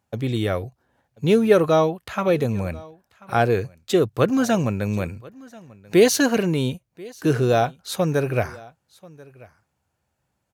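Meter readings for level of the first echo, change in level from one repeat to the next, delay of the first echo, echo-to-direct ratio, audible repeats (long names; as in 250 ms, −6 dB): −23.0 dB, repeats not evenly spaced, 1,037 ms, −23.0 dB, 1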